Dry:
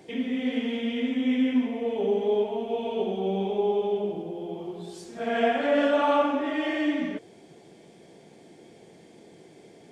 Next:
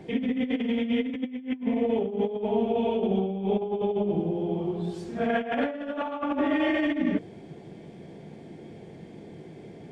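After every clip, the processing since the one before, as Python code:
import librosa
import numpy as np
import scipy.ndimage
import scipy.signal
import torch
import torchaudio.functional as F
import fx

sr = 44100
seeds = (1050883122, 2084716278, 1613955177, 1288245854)

y = fx.bass_treble(x, sr, bass_db=11, treble_db=-11)
y = fx.hum_notches(y, sr, base_hz=60, count=5)
y = fx.over_compress(y, sr, threshold_db=-26.0, ratio=-0.5)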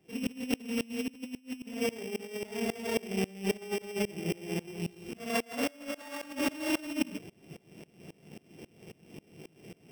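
y = np.r_[np.sort(x[:len(x) // 16 * 16].reshape(-1, 16), axis=1).ravel(), x[len(x) // 16 * 16:]]
y = fx.tremolo_decay(y, sr, direction='swelling', hz=3.7, depth_db=25)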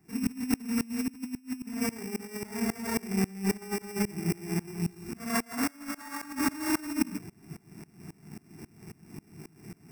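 y = fx.fixed_phaser(x, sr, hz=1300.0, stages=4)
y = y * librosa.db_to_amplitude(7.0)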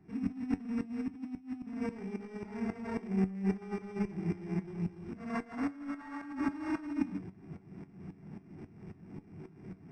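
y = fx.law_mismatch(x, sr, coded='mu')
y = fx.spacing_loss(y, sr, db_at_10k=33)
y = fx.comb_fb(y, sr, f0_hz=94.0, decay_s=0.17, harmonics='all', damping=0.0, mix_pct=60)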